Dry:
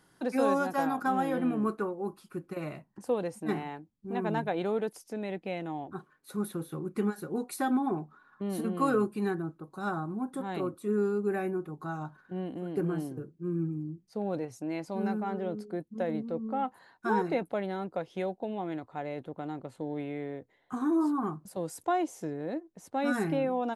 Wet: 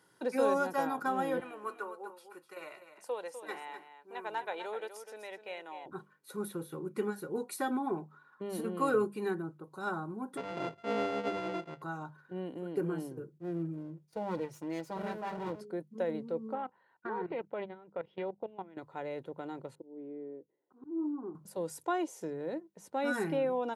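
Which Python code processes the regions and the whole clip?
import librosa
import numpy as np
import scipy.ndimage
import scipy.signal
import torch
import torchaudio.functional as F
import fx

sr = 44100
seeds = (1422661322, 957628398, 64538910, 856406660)

y = fx.chain(x, sr, fx.highpass(hz=720.0, slope=12),
    fx.echo_single(ms=251, db=-10.5), at=(1.4, 5.86))
y = fx.chain(y, sr, fx.sample_sort(block=64),
    fx.lowpass(hz=2500.0, slope=12),
    fx.dynamic_eq(hz=1600.0, q=1.3, threshold_db=-43.0, ratio=4.0, max_db=-4), at=(10.37, 11.82))
y = fx.chain(y, sr, fx.lower_of_two(delay_ms=6.2),
    fx.gate_hold(open_db=-51.0, close_db=-55.0, hold_ms=71.0, range_db=-21, attack_ms=1.4, release_ms=100.0), at=(13.38, 15.61))
y = fx.chain(y, sr, fx.lowpass(hz=3100.0, slope=24),
    fx.level_steps(step_db=17),
    fx.doppler_dist(depth_ms=0.15), at=(16.55, 18.77))
y = fx.chain(y, sr, fx.bandpass_q(hz=330.0, q=2.5),
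    fx.auto_swell(attack_ms=238.0), at=(19.75, 21.35))
y = scipy.signal.sosfilt(scipy.signal.butter(2, 130.0, 'highpass', fs=sr, output='sos'), y)
y = fx.hum_notches(y, sr, base_hz=50, count=4)
y = y + 0.37 * np.pad(y, (int(2.1 * sr / 1000.0), 0))[:len(y)]
y = y * 10.0 ** (-2.5 / 20.0)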